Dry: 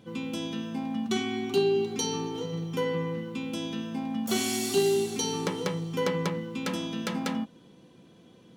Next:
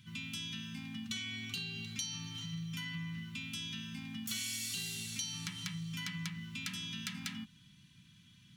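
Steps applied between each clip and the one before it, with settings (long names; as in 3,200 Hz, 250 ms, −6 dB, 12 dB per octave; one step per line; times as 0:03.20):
Chebyshev band-stop filter 120–2,200 Hz, order 2
downward compressor 3 to 1, threshold −40 dBFS, peak gain reduction 9 dB
level +1.5 dB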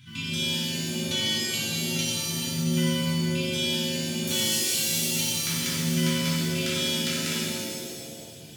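reverb with rising layers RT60 1.8 s, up +7 semitones, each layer −2 dB, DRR −7 dB
level +4.5 dB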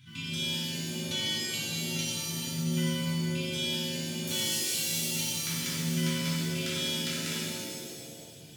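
convolution reverb, pre-delay 7 ms, DRR 15 dB
level −5 dB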